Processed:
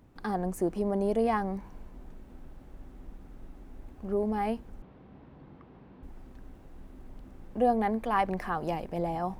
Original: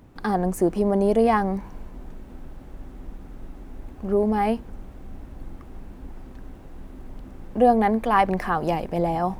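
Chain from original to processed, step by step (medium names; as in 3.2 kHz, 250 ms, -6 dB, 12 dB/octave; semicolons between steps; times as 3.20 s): 4.82–6.03 s: cabinet simulation 100–4000 Hz, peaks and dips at 150 Hz +7 dB, 460 Hz +4 dB, 1 kHz +4 dB; trim -8 dB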